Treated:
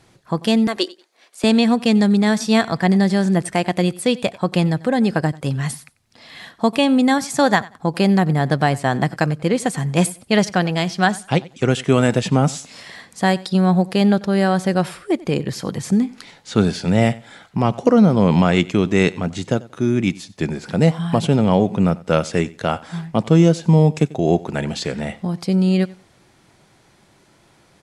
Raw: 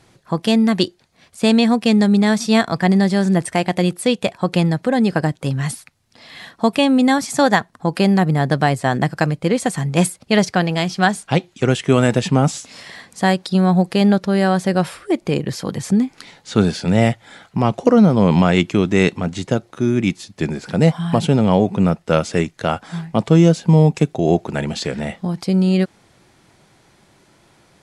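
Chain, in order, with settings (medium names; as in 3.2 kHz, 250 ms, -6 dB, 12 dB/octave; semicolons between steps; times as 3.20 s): 0.67–1.44 s: high-pass 340 Hz 24 dB/octave; feedback delay 92 ms, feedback 21%, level -21 dB; trim -1 dB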